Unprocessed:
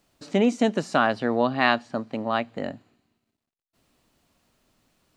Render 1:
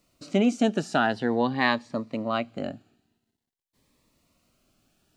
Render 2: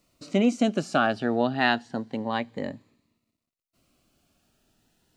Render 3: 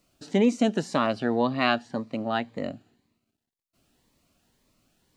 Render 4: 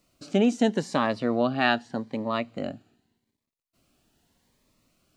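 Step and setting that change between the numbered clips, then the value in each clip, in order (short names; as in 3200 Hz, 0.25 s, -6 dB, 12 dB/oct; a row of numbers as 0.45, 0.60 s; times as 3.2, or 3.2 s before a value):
cascading phaser, rate: 0.47, 0.3, 1.9, 0.83 Hz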